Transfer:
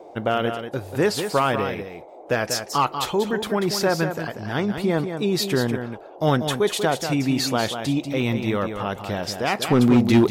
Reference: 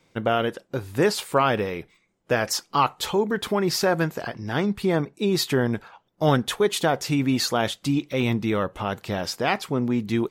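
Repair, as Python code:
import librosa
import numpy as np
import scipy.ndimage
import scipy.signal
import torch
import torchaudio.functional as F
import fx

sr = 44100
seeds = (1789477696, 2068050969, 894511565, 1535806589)

y = fx.fix_declip(x, sr, threshold_db=-10.0)
y = fx.noise_reduce(y, sr, print_start_s=1.81, print_end_s=2.31, reduce_db=22.0)
y = fx.fix_echo_inverse(y, sr, delay_ms=190, level_db=-8.0)
y = fx.gain(y, sr, db=fx.steps((0.0, 0.0), (9.62, -9.0)))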